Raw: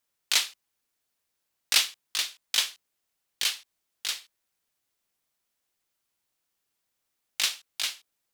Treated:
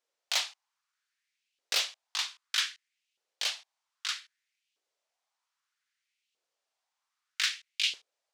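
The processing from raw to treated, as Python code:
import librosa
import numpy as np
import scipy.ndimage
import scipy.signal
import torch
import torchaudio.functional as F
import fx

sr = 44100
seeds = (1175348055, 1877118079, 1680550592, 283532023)

y = scipy.signal.sosfilt(scipy.signal.cheby1(2, 1.0, 6100.0, 'lowpass', fs=sr, output='sos'), x)
y = 10.0 ** (-18.5 / 20.0) * np.tanh(y / 10.0 ** (-18.5 / 20.0))
y = fx.filter_lfo_highpass(y, sr, shape='saw_up', hz=0.63, low_hz=420.0, high_hz=2900.0, q=3.1)
y = F.gain(torch.from_numpy(y), -2.5).numpy()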